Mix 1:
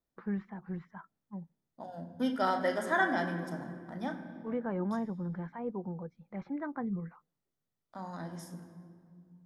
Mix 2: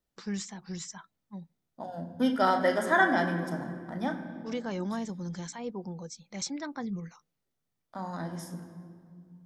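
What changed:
first voice: remove low-pass 1.7 kHz 24 dB/octave; second voice +5.0 dB

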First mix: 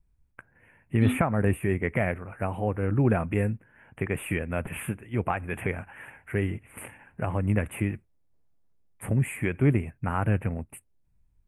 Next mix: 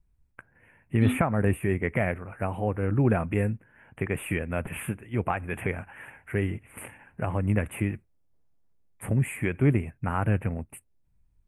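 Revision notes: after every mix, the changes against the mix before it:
no change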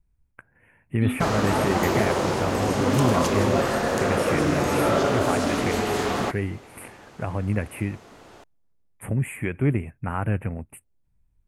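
background: unmuted

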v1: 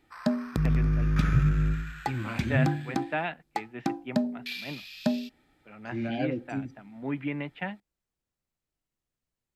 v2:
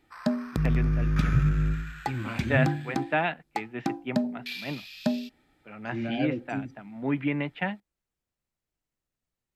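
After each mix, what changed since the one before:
first voice +4.5 dB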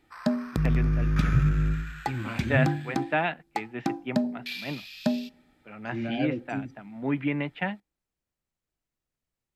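background: send +10.5 dB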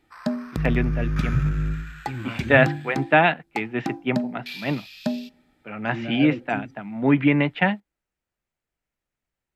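first voice +9.5 dB

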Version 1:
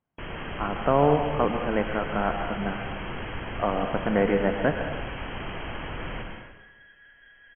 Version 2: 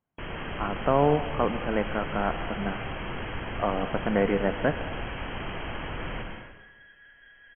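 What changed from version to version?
speech: send -7.5 dB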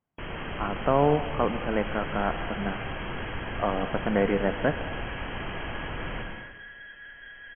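second sound +8.5 dB

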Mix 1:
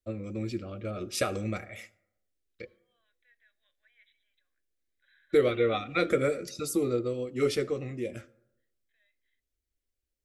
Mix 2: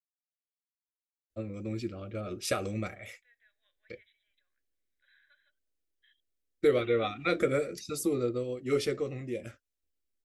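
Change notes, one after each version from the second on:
first voice: entry +1.30 s; reverb: off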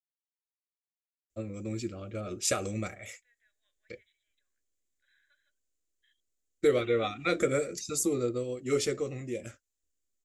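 second voice -5.0 dB; master: add peaking EQ 7.1 kHz +13.5 dB 0.48 oct

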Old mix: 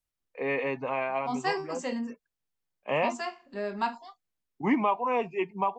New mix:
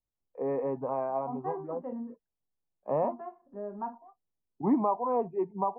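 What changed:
second voice -5.0 dB; master: add low-pass 1 kHz 24 dB/octave

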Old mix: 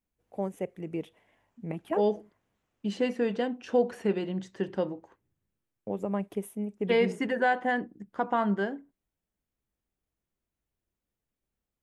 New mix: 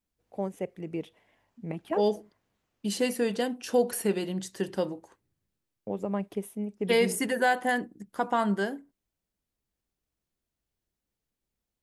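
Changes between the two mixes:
second voice: remove distance through air 160 m; master: add peaking EQ 4.6 kHz +5.5 dB 0.74 oct

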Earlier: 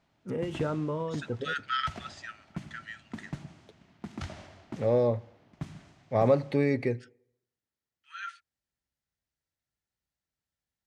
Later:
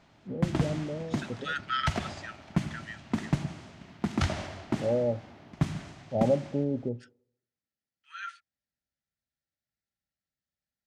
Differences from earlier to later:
first voice: add rippled Chebyshev low-pass 840 Hz, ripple 6 dB; background +11.0 dB

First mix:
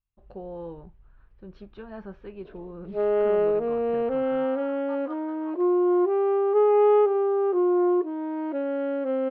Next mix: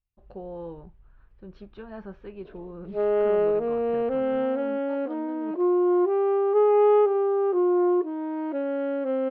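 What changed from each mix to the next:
second voice: remove resonant high-pass 1.1 kHz, resonance Q 5.1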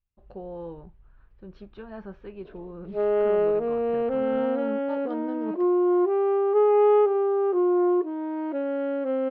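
second voice +7.5 dB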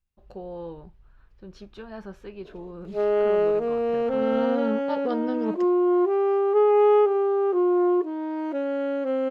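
second voice +6.0 dB; master: remove distance through air 310 m

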